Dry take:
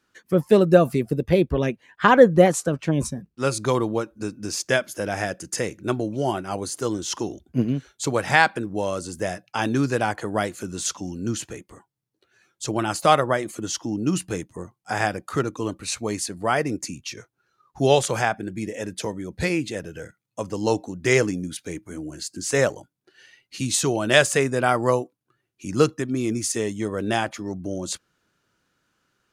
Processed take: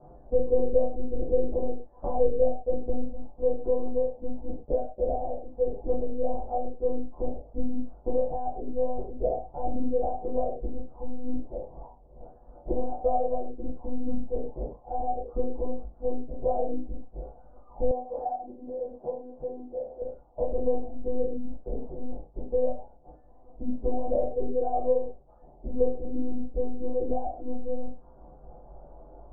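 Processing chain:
spike at every zero crossing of −15 dBFS
reverb reduction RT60 0.87 s
one-pitch LPC vocoder at 8 kHz 250 Hz
parametric band 170 Hz −14 dB 2.9 octaves
convolution reverb, pre-delay 8 ms, DRR −9.5 dB
downward compressor 3 to 1, threshold −21 dBFS, peak gain reduction 16 dB
Butterworth low-pass 730 Hz 48 dB per octave
0:17.91–0:20.02: spectral tilt +4 dB per octave

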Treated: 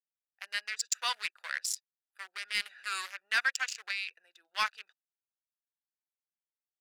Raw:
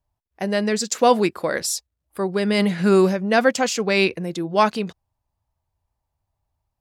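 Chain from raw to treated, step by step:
adaptive Wiener filter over 41 samples
high-pass filter 1,500 Hz 24 dB per octave
0:03.67–0:04.08: downward compressor 16 to 1, threshold −31 dBFS, peak gain reduction 14 dB
soft clipping −18.5 dBFS, distortion −16 dB

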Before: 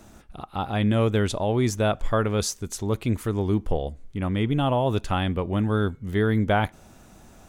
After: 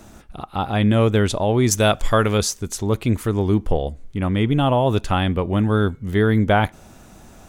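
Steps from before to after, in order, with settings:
0:01.71–0:02.38: high-shelf EQ 2,600 Hz +11 dB
level +5 dB

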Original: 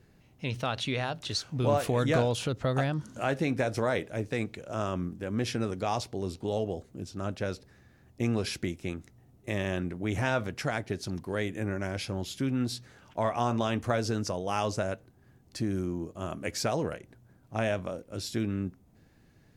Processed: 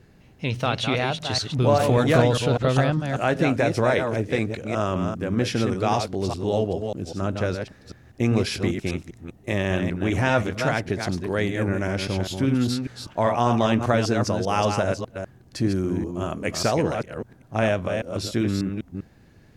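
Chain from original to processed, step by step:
delay that plays each chunk backwards 198 ms, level −5.5 dB
high-shelf EQ 7,400 Hz −5.5 dB
level +7 dB

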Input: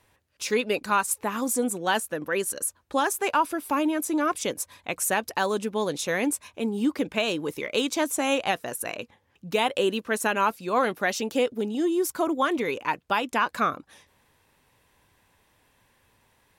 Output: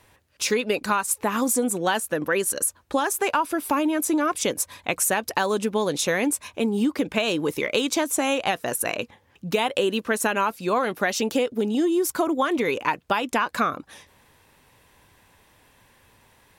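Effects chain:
downward compressor, threshold −26 dBFS, peak gain reduction 8.5 dB
level +7 dB

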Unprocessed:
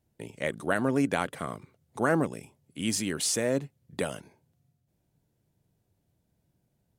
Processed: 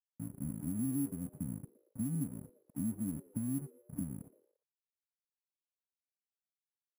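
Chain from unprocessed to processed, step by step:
brick-wall band-stop 300–8,800 Hz
bad sample-rate conversion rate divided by 4×, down filtered, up hold
downward compressor 4 to 1, threshold −38 dBFS, peak gain reduction 13 dB
dead-zone distortion −60 dBFS
high shelf with overshoot 6,000 Hz +13 dB, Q 1.5
on a send: echo with shifted repeats 115 ms, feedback 46%, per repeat +110 Hz, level −23 dB
on the sum: level +4 dB

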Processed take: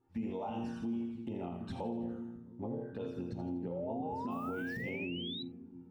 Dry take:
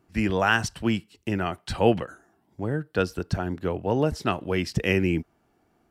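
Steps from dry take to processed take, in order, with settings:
high-shelf EQ 2,800 Hz −11.5 dB
resonators tuned to a chord F2 sus4, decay 0.57 s
downward compressor 16 to 1, threshold −48 dBFS, peak gain reduction 20 dB
flanger swept by the level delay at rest 2.4 ms, full sweep at −48.5 dBFS
hollow resonant body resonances 240/850/3,600 Hz, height 13 dB, ringing for 40 ms
0:04.30–0:04.81: background noise violet −73 dBFS
echo with a time of its own for lows and highs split 360 Hz, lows 328 ms, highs 81 ms, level −9 dB
0:03.71–0:05.43: sound drawn into the spectrogram rise 520–4,000 Hz −51 dBFS
dynamic equaliser 540 Hz, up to +6 dB, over −59 dBFS, Q 1.3
on a send at −16 dB: convolution reverb, pre-delay 5 ms
on the sum: brickwall limiter −38 dBFS, peak gain reduction 7.5 dB
level +8 dB

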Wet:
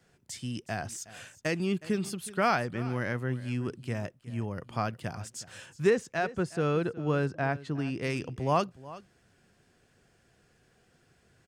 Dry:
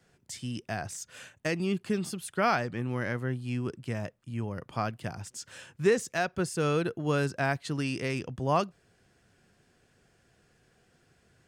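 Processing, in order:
0:05.89–0:08.01: low-pass filter 2,900 Hz → 1,300 Hz 6 dB per octave
single-tap delay 367 ms −18 dB

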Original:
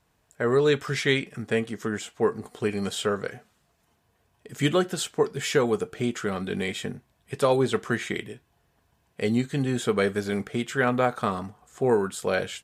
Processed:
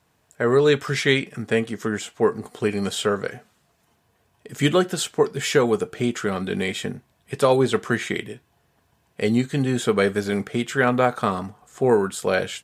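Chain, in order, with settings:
high-pass filter 72 Hz
level +4 dB

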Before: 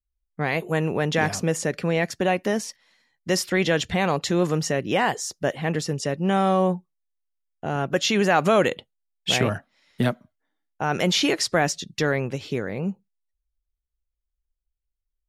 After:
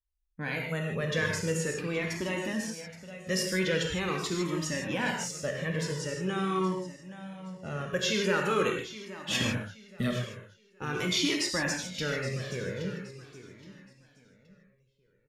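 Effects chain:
parametric band 740 Hz −14.5 dB 0.42 octaves
on a send: repeating echo 822 ms, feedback 29%, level −14 dB
on the sum: reverb whose tail is shaped and stops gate 180 ms flat, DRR 1 dB
flanger whose copies keep moving one way falling 0.44 Hz
level −3.5 dB

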